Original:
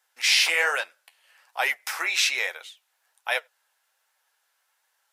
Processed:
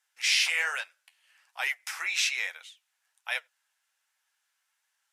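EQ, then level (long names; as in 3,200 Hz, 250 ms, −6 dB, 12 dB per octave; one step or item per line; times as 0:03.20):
resonant band-pass 4,300 Hz, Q 0.66
parametric band 4,200 Hz −6 dB 0.97 octaves
0.0 dB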